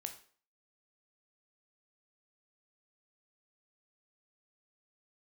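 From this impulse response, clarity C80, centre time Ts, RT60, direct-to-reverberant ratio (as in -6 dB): 15.0 dB, 11 ms, 0.45 s, 5.5 dB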